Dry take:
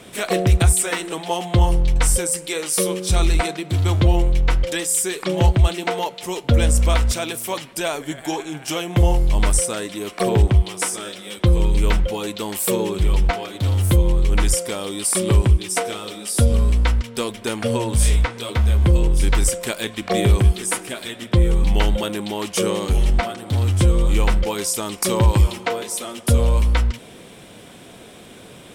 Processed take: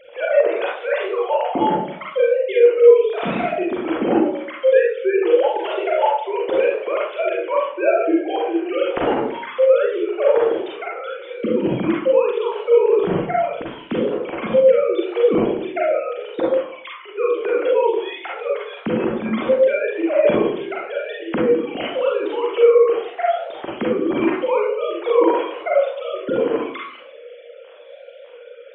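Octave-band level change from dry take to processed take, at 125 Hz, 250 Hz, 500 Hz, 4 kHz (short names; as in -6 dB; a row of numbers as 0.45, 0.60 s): -19.5, +2.0, +10.0, -7.5 dB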